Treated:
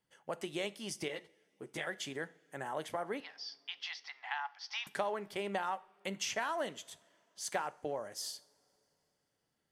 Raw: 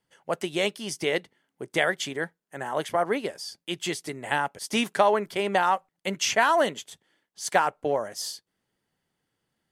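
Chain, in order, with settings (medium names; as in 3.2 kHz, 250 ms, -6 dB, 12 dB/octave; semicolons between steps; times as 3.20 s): 3.20–4.87 s: Chebyshev band-pass 760–5600 Hz, order 5; compression 2:1, threshold -34 dBFS, peak gain reduction 10.5 dB; two-slope reverb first 0.45 s, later 3.5 s, from -22 dB, DRR 15 dB; 1.08–1.87 s: three-phase chorus; trim -5.5 dB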